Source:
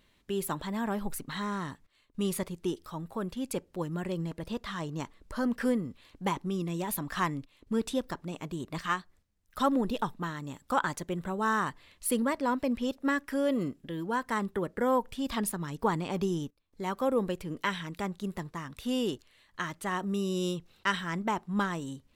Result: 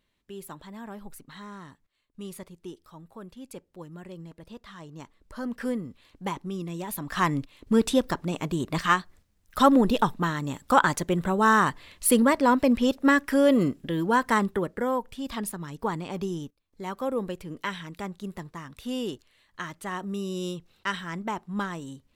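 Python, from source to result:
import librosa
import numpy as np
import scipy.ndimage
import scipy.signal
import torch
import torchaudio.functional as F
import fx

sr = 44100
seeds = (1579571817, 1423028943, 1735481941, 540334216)

y = fx.gain(x, sr, db=fx.line((4.77, -8.5), (5.77, -1.0), (6.94, -1.0), (7.37, 8.5), (14.33, 8.5), (14.95, -1.0)))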